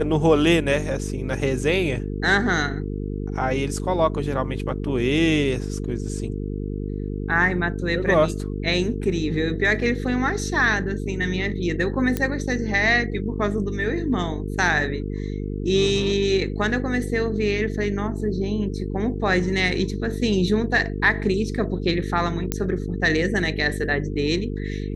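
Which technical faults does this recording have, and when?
mains buzz 50 Hz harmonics 9 −28 dBFS
0:12.17: click −10 dBFS
0:22.52: click −7 dBFS

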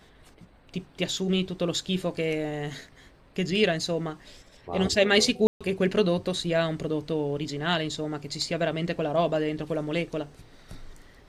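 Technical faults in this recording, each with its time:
0:05.47–0:05.61: drop-out 136 ms

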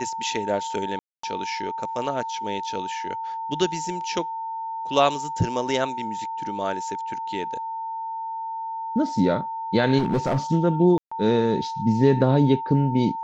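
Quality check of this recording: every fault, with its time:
whistle 900 Hz −28 dBFS
0:00.99–0:01.23: drop-out 244 ms
0:09.98–0:10.38: clipping −18 dBFS
0:10.98–0:11.12: drop-out 135 ms

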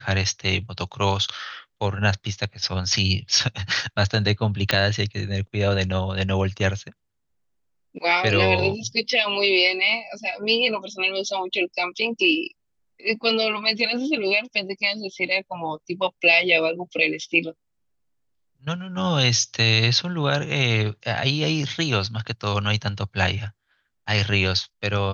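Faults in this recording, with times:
0:04.71: click −5 dBFS

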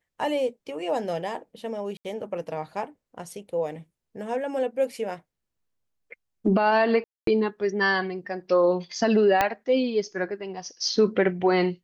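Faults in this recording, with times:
0:01.97–0:02.05: drop-out 78 ms
0:07.04–0:07.27: drop-out 233 ms
0:09.41: click −7 dBFS

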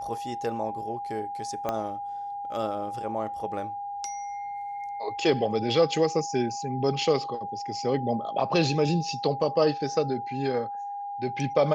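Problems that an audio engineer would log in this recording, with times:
whistle 810 Hz −32 dBFS
0:01.69: click −15 dBFS

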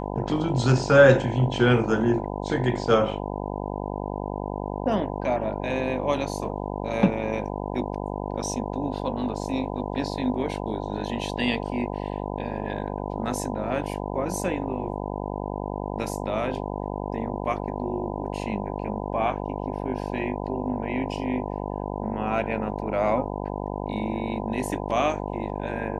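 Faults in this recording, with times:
mains buzz 50 Hz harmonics 20 −31 dBFS

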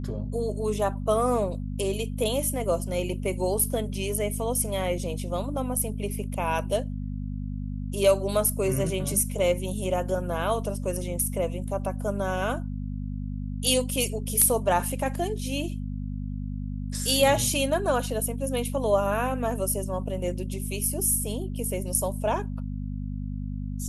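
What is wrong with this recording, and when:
mains hum 50 Hz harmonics 5 −32 dBFS

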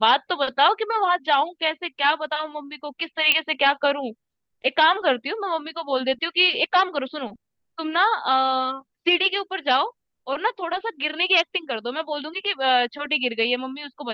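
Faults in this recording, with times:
0:03.32: click −5 dBFS

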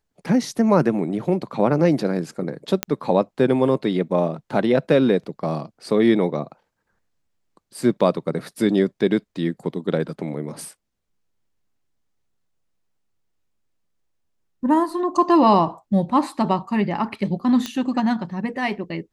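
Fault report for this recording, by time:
0:02.83: click −3 dBFS
0:17.66: click −12 dBFS

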